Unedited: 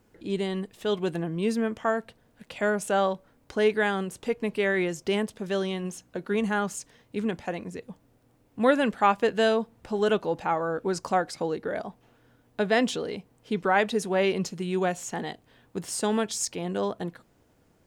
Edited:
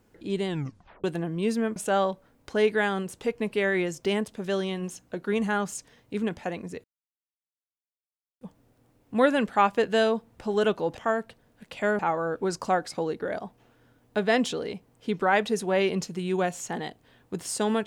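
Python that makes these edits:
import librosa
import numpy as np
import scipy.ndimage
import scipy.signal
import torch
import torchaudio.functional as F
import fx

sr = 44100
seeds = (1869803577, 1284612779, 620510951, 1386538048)

y = fx.edit(x, sr, fx.tape_stop(start_s=0.48, length_s=0.56),
    fx.move(start_s=1.76, length_s=1.02, to_s=10.42),
    fx.insert_silence(at_s=7.86, length_s=1.57), tone=tone)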